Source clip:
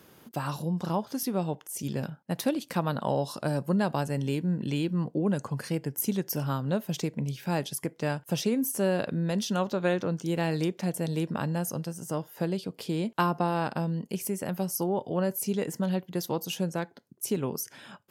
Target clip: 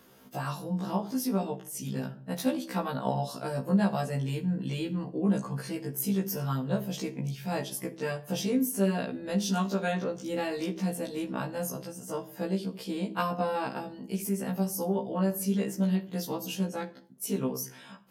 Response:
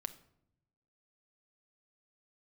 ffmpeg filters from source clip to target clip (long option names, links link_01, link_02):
-filter_complex "[0:a]asettb=1/sr,asplit=3[link_01][link_02][link_03];[link_01]atrim=end=9.454[link_04];[link_02]atrim=start=9.45:end=9.92,asetpts=PTS-STARTPTS,afade=type=in:duration=0.004:curve=qsin,afade=type=out:start_time=0.466:duration=0.004:curve=qsin,bass=frequency=250:gain=0,treble=frequency=4000:gain=6[link_05];[link_03]atrim=start=9.916[link_06];[link_04][link_05]acrossfade=duration=0.004:curve1=hsin:curve2=qsin[link_07];[link_07][link_06]acrossfade=duration=0.004:curve1=qsin:curve2=hsin[link_08];[1:a]atrim=start_sample=2205,afade=type=out:start_time=0.4:duration=0.01,atrim=end_sample=18081,asetrate=57330,aresample=44100[link_09];[link_08][link_09]afir=irnorm=-1:irlink=0,afftfilt=real='re*1.73*eq(mod(b,3),0)':imag='im*1.73*eq(mod(b,3),0)':win_size=2048:overlap=0.75,volume=5dB"